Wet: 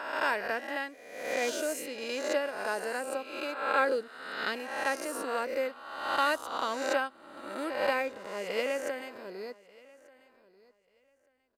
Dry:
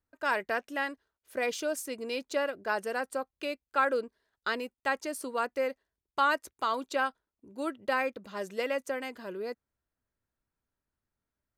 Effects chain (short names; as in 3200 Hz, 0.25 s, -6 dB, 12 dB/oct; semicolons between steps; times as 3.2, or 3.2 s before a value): spectral swells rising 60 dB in 1.32 s; dynamic EQ 1200 Hz, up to -4 dB, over -36 dBFS, Q 1.9; on a send: feedback echo 1.188 s, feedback 21%, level -18.5 dB; on the sum: upward expander 1.5:1, over -39 dBFS